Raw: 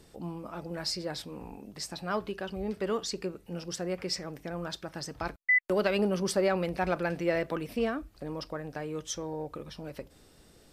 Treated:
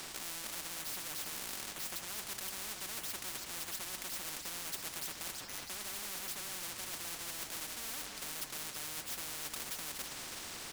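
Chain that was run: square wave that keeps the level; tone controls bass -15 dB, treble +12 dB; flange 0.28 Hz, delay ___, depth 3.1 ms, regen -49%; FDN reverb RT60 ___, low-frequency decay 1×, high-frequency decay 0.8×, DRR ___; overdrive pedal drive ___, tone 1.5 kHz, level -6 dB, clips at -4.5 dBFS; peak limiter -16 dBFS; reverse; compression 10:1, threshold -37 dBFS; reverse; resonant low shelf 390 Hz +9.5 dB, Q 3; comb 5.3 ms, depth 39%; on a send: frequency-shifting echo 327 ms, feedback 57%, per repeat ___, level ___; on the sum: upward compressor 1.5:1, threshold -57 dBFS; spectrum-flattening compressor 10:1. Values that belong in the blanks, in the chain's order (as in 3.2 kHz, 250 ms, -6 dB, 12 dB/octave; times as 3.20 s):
2.5 ms, 0.84 s, 18.5 dB, 15 dB, -43 Hz, -14 dB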